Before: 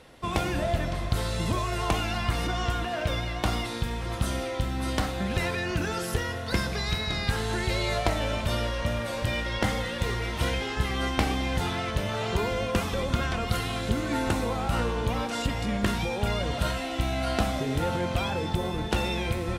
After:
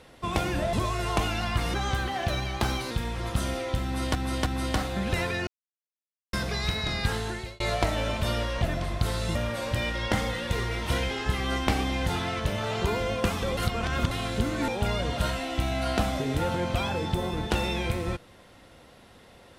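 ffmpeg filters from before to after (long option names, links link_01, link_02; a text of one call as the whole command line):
ffmpeg -i in.wav -filter_complex "[0:a]asplit=14[link_01][link_02][link_03][link_04][link_05][link_06][link_07][link_08][link_09][link_10][link_11][link_12][link_13][link_14];[link_01]atrim=end=0.732[link_15];[link_02]atrim=start=1.458:end=2.474[link_16];[link_03]atrim=start=2.47:end=3.77,asetpts=PTS-STARTPTS,asetrate=48951,aresample=44100[link_17];[link_04]atrim=start=3.766:end=5.012[link_18];[link_05]atrim=start=4.698:end=5.012[link_19];[link_06]atrim=start=4.698:end=5.71,asetpts=PTS-STARTPTS,afade=type=out:start_time=1.008:duration=0.004:curve=hsin[link_20];[link_07]atrim=start=5.71:end=6.57,asetpts=PTS-STARTPTS,volume=0[link_21];[link_08]atrim=start=6.57:end=7.84,asetpts=PTS-STARTPTS,afade=type=in:duration=0.004:curve=hsin,afade=type=out:start_time=0.8:duration=0.47[link_22];[link_09]atrim=start=7.84:end=8.862,asetpts=PTS-STARTPTS,afade=type=in:duration=0.004:curve=hsin[link_23];[link_10]atrim=start=0.728:end=1.462[link_24];[link_11]atrim=start=8.858:end=13.082[link_25];[link_12]atrim=start=13.078:end=13.622,asetpts=PTS-STARTPTS,areverse[link_26];[link_13]atrim=start=13.618:end=14.192[link_27];[link_14]atrim=start=16.088[link_28];[link_15][link_16]acrossfade=duration=0.004:curve1=hsin:curve2=hsin[link_29];[link_29][link_17]acrossfade=duration=0.004:curve1=hsin:curve2=hsin[link_30];[link_30][link_18]acrossfade=duration=0.004:curve1=hsin:curve2=hsin[link_31];[link_31][link_19]acrossfade=duration=0.004:curve1=hsin:curve2=hsin[link_32];[link_20][link_21][link_22][link_23]concat=n=4:v=0:a=1[link_33];[link_32][link_33]acrossfade=duration=0.004:curve1=hsin:curve2=hsin[link_34];[link_34][link_24]acrossfade=duration=0.004:curve1=hsin:curve2=hsin[link_35];[link_35][link_25]acrossfade=duration=0.004:curve1=hsin:curve2=hsin[link_36];[link_36][link_26]acrossfade=duration=0.004:curve1=hsin:curve2=hsin[link_37];[link_37][link_27]acrossfade=duration=0.004:curve1=hsin:curve2=hsin[link_38];[link_38][link_28]acrossfade=duration=0.004:curve1=hsin:curve2=hsin" out.wav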